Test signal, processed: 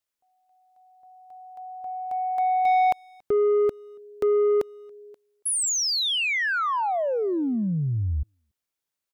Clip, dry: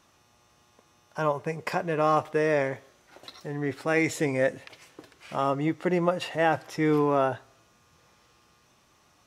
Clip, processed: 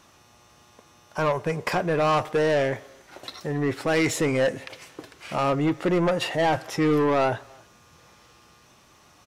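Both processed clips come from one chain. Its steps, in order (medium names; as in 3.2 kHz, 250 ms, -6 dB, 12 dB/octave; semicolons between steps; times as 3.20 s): saturation -24 dBFS; speakerphone echo 280 ms, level -23 dB; trim +7 dB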